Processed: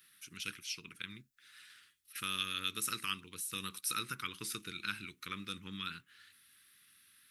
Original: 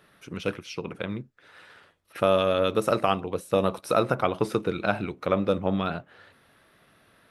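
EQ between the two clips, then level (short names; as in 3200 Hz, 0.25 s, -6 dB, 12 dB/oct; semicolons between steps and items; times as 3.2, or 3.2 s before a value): Butterworth band-stop 660 Hz, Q 0.59; pre-emphasis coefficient 0.8; tilt shelf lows -5.5 dB, about 730 Hz; 0.0 dB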